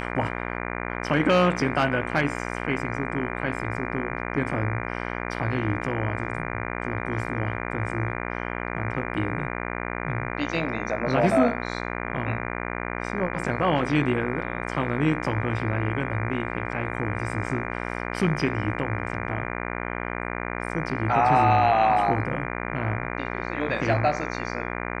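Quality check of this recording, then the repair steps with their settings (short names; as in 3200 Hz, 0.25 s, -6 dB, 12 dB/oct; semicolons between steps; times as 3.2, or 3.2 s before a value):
buzz 60 Hz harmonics 40 -31 dBFS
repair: de-hum 60 Hz, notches 40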